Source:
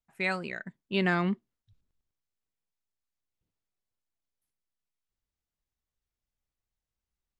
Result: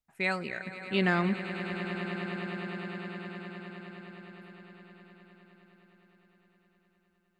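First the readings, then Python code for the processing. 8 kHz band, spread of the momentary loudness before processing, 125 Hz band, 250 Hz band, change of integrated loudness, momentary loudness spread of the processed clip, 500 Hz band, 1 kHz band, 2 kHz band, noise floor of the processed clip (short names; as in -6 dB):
n/a, 12 LU, +1.5 dB, +2.0 dB, -3.0 dB, 21 LU, +1.5 dB, +1.5 dB, +1.5 dB, -72 dBFS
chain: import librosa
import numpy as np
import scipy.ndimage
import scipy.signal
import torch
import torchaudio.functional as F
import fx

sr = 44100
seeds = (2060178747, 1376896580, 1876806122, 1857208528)

y = fx.echo_swell(x, sr, ms=103, loudest=8, wet_db=-15)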